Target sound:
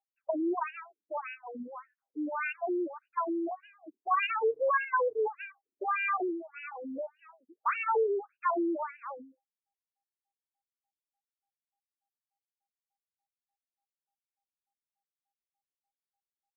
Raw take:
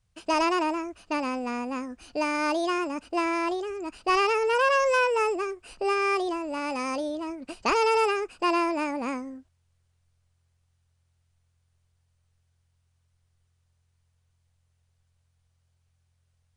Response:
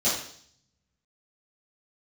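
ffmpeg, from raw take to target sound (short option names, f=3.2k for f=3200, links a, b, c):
-af "aeval=exprs='val(0)+0.00178*sin(2*PI*800*n/s)':c=same,agate=range=-33dB:threshold=-26dB:ratio=3:detection=peak,afftfilt=real='re*between(b*sr/1024,300*pow(2100/300,0.5+0.5*sin(2*PI*1.7*pts/sr))/1.41,300*pow(2100/300,0.5+0.5*sin(2*PI*1.7*pts/sr))*1.41)':imag='im*between(b*sr/1024,300*pow(2100/300,0.5+0.5*sin(2*PI*1.7*pts/sr))/1.41,300*pow(2100/300,0.5+0.5*sin(2*PI*1.7*pts/sr))*1.41)':win_size=1024:overlap=0.75"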